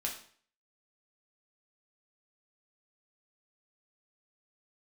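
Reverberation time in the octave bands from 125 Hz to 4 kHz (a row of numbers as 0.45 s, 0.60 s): 0.55 s, 0.50 s, 0.50 s, 0.50 s, 0.50 s, 0.45 s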